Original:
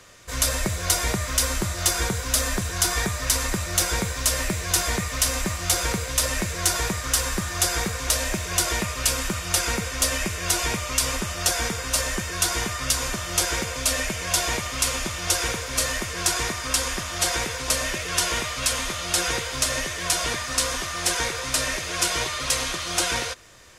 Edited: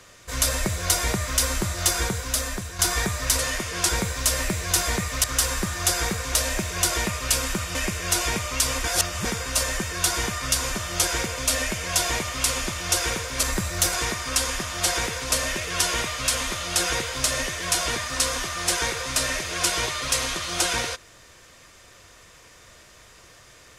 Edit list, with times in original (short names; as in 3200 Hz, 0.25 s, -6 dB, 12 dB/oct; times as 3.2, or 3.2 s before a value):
1.97–2.79 fade out, to -8 dB
3.39–3.89 swap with 15.81–16.31
5.24–6.99 cut
9.5–10.13 cut
11.22–11.63 reverse